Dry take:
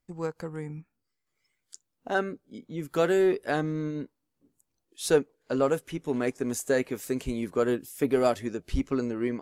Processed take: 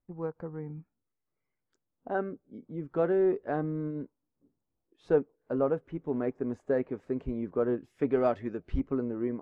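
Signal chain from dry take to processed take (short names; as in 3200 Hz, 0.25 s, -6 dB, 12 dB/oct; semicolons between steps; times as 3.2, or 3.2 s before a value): LPF 1100 Hz 12 dB/oct, from 7.78 s 1800 Hz, from 8.8 s 1100 Hz; gain -2.5 dB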